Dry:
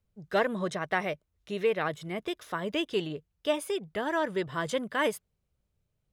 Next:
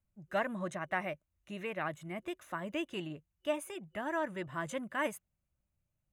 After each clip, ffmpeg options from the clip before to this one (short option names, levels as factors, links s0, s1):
-af "superequalizer=7b=0.316:13b=0.398:14b=0.282,volume=0.531"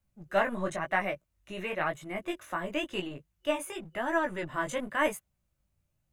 -filter_complex "[0:a]flanger=delay=15:depth=6.7:speed=0.96,acrossover=split=310[s0][s1];[s0]aeval=exprs='clip(val(0),-1,0.00106)':c=same[s2];[s2][s1]amix=inputs=2:normalize=0,volume=2.82"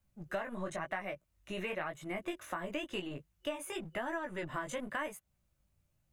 -af "acompressor=threshold=0.0178:ratio=12,volume=1.12"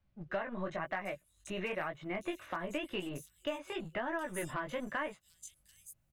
-filter_complex "[0:a]volume=23.7,asoftclip=hard,volume=0.0422,acrossover=split=4700[s0][s1];[s1]adelay=740[s2];[s0][s2]amix=inputs=2:normalize=0,volume=1.12"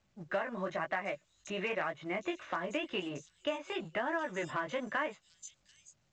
-af "highpass=f=220:p=1,volume=1.41" -ar 16000 -c:a pcm_mulaw